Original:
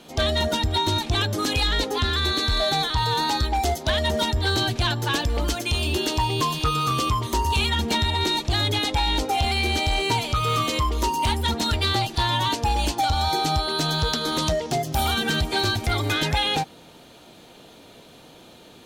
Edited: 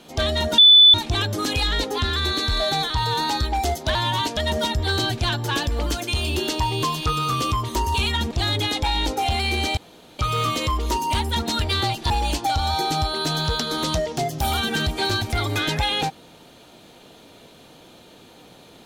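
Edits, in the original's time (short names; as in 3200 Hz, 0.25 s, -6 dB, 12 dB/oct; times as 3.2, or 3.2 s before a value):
0.58–0.94 bleep 3490 Hz -7 dBFS
7.89–8.43 cut
9.89–10.31 room tone
12.22–12.64 move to 3.95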